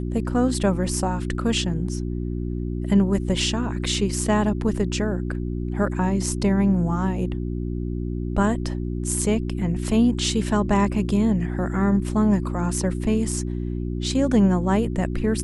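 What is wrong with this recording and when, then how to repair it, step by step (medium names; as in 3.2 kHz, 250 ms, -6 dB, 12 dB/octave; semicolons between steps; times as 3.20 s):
hum 60 Hz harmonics 6 -27 dBFS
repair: de-hum 60 Hz, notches 6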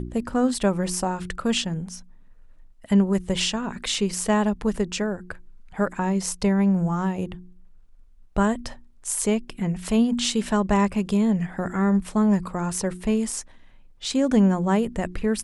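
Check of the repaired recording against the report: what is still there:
nothing left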